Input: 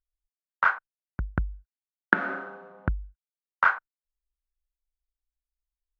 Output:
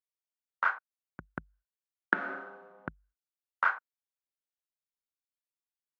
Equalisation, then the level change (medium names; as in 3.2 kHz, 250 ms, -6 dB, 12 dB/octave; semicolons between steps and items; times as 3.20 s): high-pass 220 Hz 12 dB/octave; -6.0 dB